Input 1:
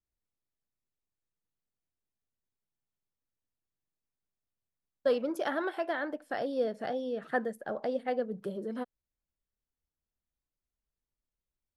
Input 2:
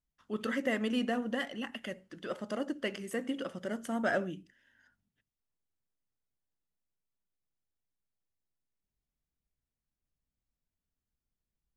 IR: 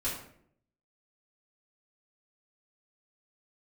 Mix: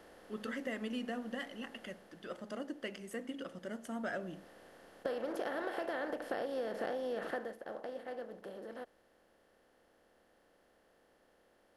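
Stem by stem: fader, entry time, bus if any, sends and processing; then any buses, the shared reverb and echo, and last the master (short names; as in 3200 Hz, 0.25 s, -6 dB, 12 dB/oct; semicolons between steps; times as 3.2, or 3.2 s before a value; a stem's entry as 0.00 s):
1.85 s -5.5 dB -> 2.39 s -13 dB -> 3.93 s -13 dB -> 4.48 s -5.5 dB -> 7.26 s -5.5 dB -> 7.57 s -17 dB, 0.00 s, no send, per-bin compression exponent 0.4; resonant low shelf 100 Hz +9 dB, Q 1.5
-6.0 dB, 0.00 s, no send, de-hum 68.27 Hz, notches 16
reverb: off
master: compressor 10:1, threshold -34 dBFS, peak gain reduction 8.5 dB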